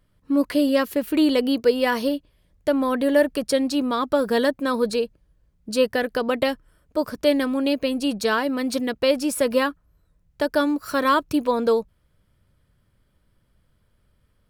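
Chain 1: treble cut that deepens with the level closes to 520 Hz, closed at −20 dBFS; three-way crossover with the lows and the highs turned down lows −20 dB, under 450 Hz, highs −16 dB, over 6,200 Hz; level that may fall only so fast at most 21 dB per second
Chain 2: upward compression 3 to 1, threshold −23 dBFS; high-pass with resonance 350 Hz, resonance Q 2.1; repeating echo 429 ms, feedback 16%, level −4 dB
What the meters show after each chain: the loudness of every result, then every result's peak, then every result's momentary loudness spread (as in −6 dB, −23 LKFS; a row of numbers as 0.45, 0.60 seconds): −28.5, −18.5 LKFS; −13.0, −2.0 dBFS; 11, 7 LU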